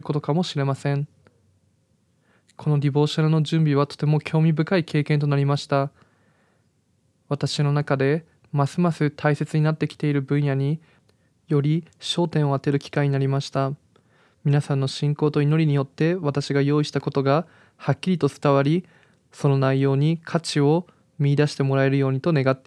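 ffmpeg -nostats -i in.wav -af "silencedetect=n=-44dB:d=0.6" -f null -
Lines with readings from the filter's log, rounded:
silence_start: 1.27
silence_end: 2.49 | silence_duration: 1.22
silence_start: 6.03
silence_end: 7.30 | silence_duration: 1.28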